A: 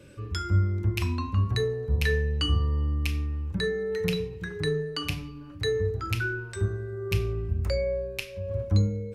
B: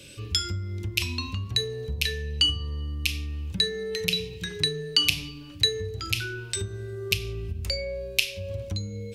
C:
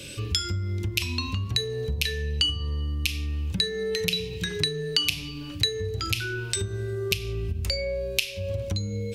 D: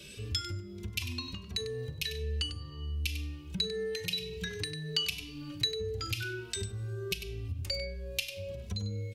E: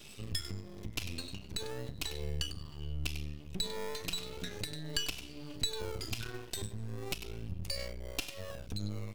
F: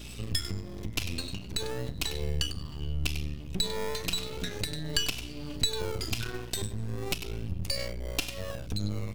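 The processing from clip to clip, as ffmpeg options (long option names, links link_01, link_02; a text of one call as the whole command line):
ffmpeg -i in.wav -af "acompressor=threshold=-28dB:ratio=10,highshelf=frequency=2100:width_type=q:width=1.5:gain=13.5" out.wav
ffmpeg -i in.wav -af "acompressor=threshold=-35dB:ratio=2,volume=7dB" out.wav
ffmpeg -i in.wav -filter_complex "[0:a]aecho=1:1:98:0.299,asplit=2[link_01][link_02];[link_02]adelay=2.7,afreqshift=1.4[link_03];[link_01][link_03]amix=inputs=2:normalize=1,volume=-5.5dB" out.wav
ffmpeg -i in.wav -filter_complex "[0:a]acrossover=split=390|1600|2700[link_01][link_02][link_03][link_04];[link_02]acrusher=samples=24:mix=1:aa=0.000001:lfo=1:lforange=14.4:lforate=0.34[link_05];[link_01][link_05][link_03][link_04]amix=inputs=4:normalize=0,aeval=exprs='max(val(0),0)':channel_layout=same,volume=1dB" out.wav
ffmpeg -i in.wav -af "aeval=exprs='val(0)+0.00316*(sin(2*PI*60*n/s)+sin(2*PI*2*60*n/s)/2+sin(2*PI*3*60*n/s)/3+sin(2*PI*4*60*n/s)/4+sin(2*PI*5*60*n/s)/5)':channel_layout=same,volume=6dB" out.wav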